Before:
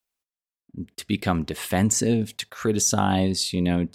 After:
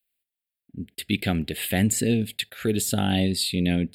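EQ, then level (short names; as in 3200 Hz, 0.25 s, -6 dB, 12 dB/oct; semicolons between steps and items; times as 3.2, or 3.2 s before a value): high shelf 2200 Hz +8 dB; fixed phaser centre 2600 Hz, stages 4; 0.0 dB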